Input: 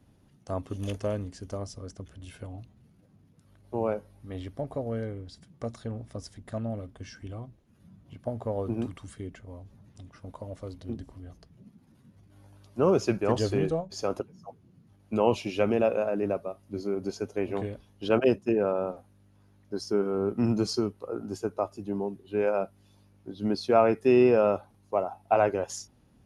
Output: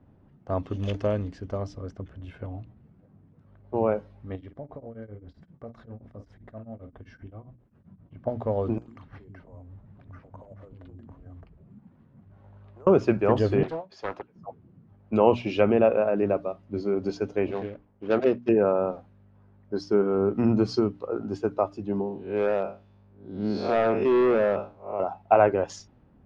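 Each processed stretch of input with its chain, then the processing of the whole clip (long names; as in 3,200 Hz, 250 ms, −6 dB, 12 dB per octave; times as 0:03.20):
0:04.35–0:08.17: double-tracking delay 48 ms −11.5 dB + downward compressor 2.5 to 1, threshold −43 dBFS + tremolo along a rectified sine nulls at 7.6 Hz
0:08.78–0:12.87: downward compressor 20 to 1, threshold −44 dBFS + three-band delay without the direct sound mids, highs, lows 40/100 ms, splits 330/2,900 Hz + bad sample-rate conversion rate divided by 6×, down none, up hold
0:13.63–0:14.36: high-pass filter 1,200 Hz 6 dB per octave + parametric band 8,300 Hz −6.5 dB 0.81 octaves + highs frequency-modulated by the lows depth 0.77 ms
0:17.51–0:18.49: running median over 25 samples + Chebyshev low-pass with heavy ripple 7,000 Hz, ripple 3 dB + parametric band 68 Hz −9 dB 2 octaves
0:22.01–0:25.00: spectrum smeared in time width 163 ms + gain into a clipping stage and back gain 22 dB
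whole clip: treble cut that deepens with the level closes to 2,400 Hz, closed at −22.5 dBFS; mains-hum notches 60/120/180/240/300 Hz; low-pass that shuts in the quiet parts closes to 1,400 Hz, open at −23 dBFS; level +4.5 dB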